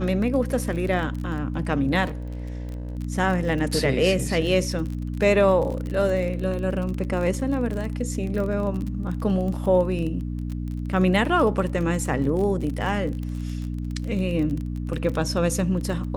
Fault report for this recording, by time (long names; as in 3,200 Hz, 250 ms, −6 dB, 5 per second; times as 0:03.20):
surface crackle 28 per second −29 dBFS
mains hum 60 Hz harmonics 5 −29 dBFS
0:02.06–0:02.97: clipping −28 dBFS